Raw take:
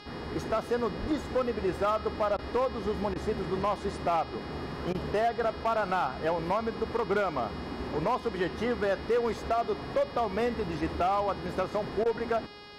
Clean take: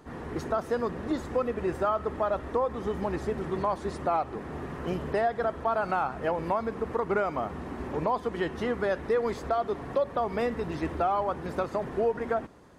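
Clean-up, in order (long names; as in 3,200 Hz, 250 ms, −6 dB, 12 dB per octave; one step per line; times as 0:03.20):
clipped peaks rebuilt −21.5 dBFS
hum removal 413 Hz, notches 13
0:01.00–0:01.12: high-pass filter 140 Hz 24 dB per octave
repair the gap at 0:02.37/0:03.14/0:04.93/0:12.04, 15 ms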